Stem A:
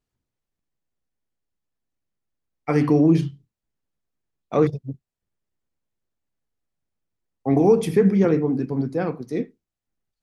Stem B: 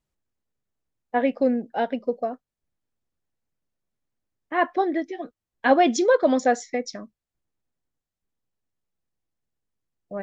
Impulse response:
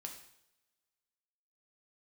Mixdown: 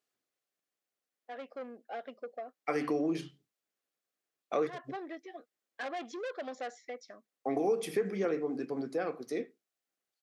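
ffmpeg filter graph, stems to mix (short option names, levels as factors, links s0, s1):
-filter_complex "[0:a]volume=1.12[s0];[1:a]acrossover=split=3400[s1][s2];[s2]acompressor=threshold=0.00447:ratio=4:attack=1:release=60[s3];[s1][s3]amix=inputs=2:normalize=0,asoftclip=type=tanh:threshold=0.0891,adelay=150,volume=0.316,afade=t=in:st=1.06:d=0.79:silence=0.375837[s4];[s0][s4]amix=inputs=2:normalize=0,highpass=450,bandreject=f=930:w=5.2,acompressor=threshold=0.0178:ratio=2"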